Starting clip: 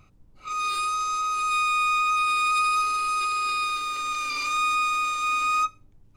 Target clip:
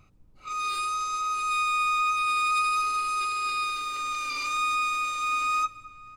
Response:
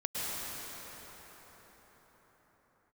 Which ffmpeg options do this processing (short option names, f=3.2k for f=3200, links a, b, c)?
-filter_complex "[0:a]asplit=2[a][b];[b]adelay=530.6,volume=-20dB,highshelf=f=4k:g=-11.9[c];[a][c]amix=inputs=2:normalize=0,asplit=2[d][e];[1:a]atrim=start_sample=2205,afade=t=out:st=0.32:d=0.01,atrim=end_sample=14553[f];[e][f]afir=irnorm=-1:irlink=0,volume=-23.5dB[g];[d][g]amix=inputs=2:normalize=0,volume=-3dB"